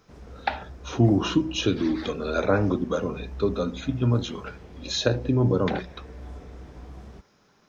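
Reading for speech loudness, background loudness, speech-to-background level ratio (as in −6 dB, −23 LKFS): −25.5 LKFS, −44.0 LKFS, 18.5 dB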